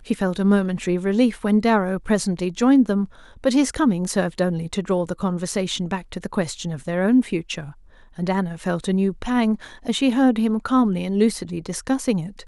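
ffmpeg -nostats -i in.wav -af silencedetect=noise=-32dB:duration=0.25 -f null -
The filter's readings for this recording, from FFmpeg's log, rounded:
silence_start: 3.05
silence_end: 3.44 | silence_duration: 0.39
silence_start: 7.70
silence_end: 8.18 | silence_duration: 0.48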